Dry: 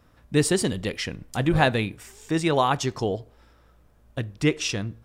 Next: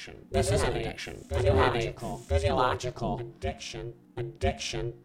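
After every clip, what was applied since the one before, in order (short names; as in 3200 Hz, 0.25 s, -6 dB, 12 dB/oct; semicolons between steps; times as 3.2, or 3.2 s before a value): ring modulator 240 Hz; harmonic-percussive split percussive -8 dB; reverse echo 0.995 s -5 dB; gain +1.5 dB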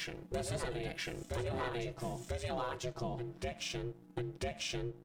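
comb 6.1 ms, depth 58%; sample leveller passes 1; compressor 6:1, threshold -33 dBFS, peak gain reduction 15.5 dB; gain -2.5 dB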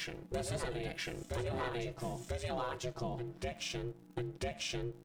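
crackle 71/s -54 dBFS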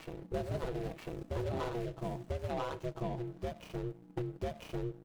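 median filter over 25 samples; gain +2 dB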